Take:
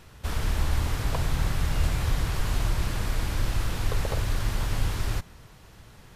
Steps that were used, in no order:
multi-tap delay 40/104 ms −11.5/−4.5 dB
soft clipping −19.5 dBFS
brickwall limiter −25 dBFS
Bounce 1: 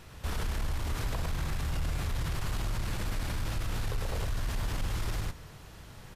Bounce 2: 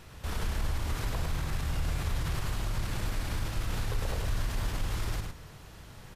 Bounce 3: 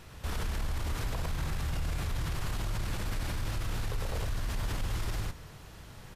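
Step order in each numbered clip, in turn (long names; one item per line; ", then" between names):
soft clipping, then multi-tap delay, then brickwall limiter
brickwall limiter, then soft clipping, then multi-tap delay
multi-tap delay, then brickwall limiter, then soft clipping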